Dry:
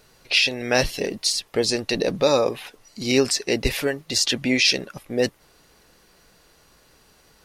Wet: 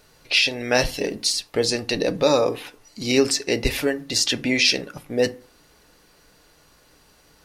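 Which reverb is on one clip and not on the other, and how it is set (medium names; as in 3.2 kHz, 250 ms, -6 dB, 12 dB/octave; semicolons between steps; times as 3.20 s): FDN reverb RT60 0.4 s, low-frequency decay 1.2×, high-frequency decay 0.55×, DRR 11 dB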